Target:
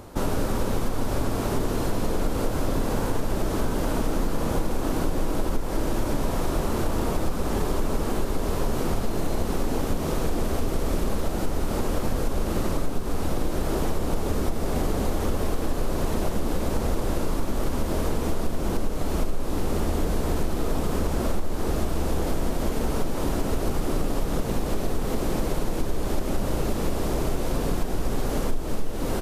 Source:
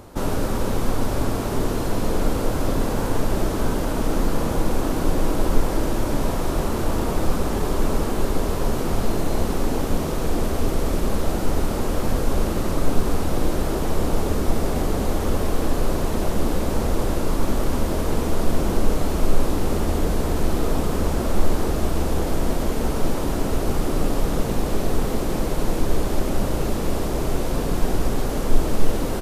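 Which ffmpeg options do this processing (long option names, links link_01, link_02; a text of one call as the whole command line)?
ffmpeg -i in.wav -af "acompressor=threshold=-19dB:ratio=6" out.wav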